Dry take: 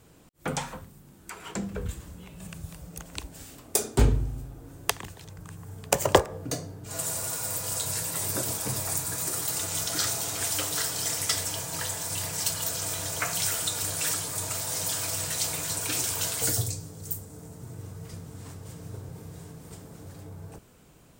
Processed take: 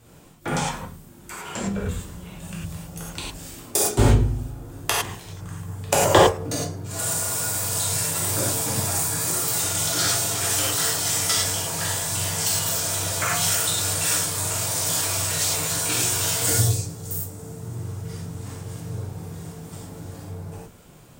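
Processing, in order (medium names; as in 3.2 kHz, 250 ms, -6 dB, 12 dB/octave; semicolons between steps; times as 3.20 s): gated-style reverb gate 130 ms flat, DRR -6 dB; loudspeaker Doppler distortion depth 0.11 ms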